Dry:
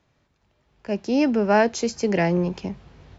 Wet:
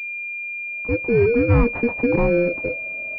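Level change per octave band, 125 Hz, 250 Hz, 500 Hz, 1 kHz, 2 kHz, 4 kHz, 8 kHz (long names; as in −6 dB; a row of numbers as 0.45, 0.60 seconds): +7.0 dB, +0.5 dB, +4.0 dB, −5.5 dB, +7.5 dB, below −15 dB, can't be measured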